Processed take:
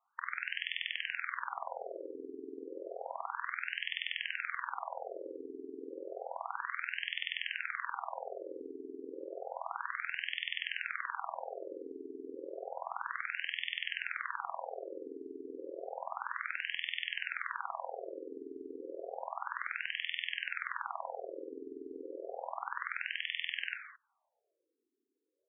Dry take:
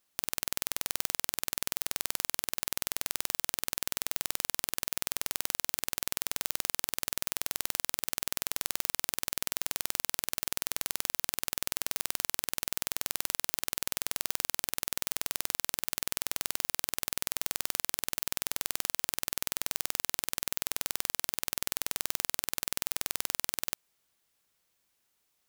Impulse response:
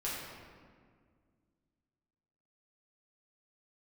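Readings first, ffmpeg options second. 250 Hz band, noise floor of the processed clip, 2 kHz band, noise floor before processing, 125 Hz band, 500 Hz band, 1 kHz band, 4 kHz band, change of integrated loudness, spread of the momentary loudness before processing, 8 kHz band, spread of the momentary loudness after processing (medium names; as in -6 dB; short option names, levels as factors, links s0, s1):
0.0 dB, -83 dBFS, +3.0 dB, -76 dBFS, under -35 dB, +4.0 dB, +3.0 dB, -5.5 dB, -7.5 dB, 1 LU, under -40 dB, 10 LU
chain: -filter_complex "[0:a]highshelf=f=5200:t=q:w=1.5:g=11.5,asplit=2[s0][s1];[1:a]atrim=start_sample=2205,afade=t=out:st=0.25:d=0.01,atrim=end_sample=11466,adelay=25[s2];[s1][s2]afir=irnorm=-1:irlink=0,volume=0.422[s3];[s0][s3]amix=inputs=2:normalize=0,afftfilt=real='re*between(b*sr/1024,320*pow(2500/320,0.5+0.5*sin(2*PI*0.31*pts/sr))/1.41,320*pow(2500/320,0.5+0.5*sin(2*PI*0.31*pts/sr))*1.41)':imag='im*between(b*sr/1024,320*pow(2500/320,0.5+0.5*sin(2*PI*0.31*pts/sr))/1.41,320*pow(2500/320,0.5+0.5*sin(2*PI*0.31*pts/sr))*1.41)':win_size=1024:overlap=0.75,volume=2.51"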